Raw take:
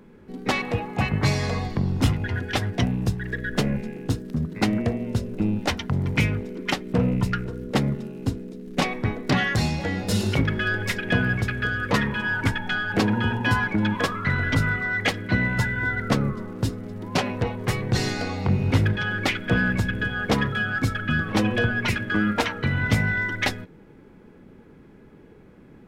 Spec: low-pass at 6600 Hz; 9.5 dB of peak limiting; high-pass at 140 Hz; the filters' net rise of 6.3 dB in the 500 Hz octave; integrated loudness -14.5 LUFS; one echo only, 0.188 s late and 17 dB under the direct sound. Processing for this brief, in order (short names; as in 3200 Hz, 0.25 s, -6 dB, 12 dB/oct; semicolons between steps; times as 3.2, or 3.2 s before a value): HPF 140 Hz; LPF 6600 Hz; bell 500 Hz +7.5 dB; limiter -14 dBFS; echo 0.188 s -17 dB; gain +11 dB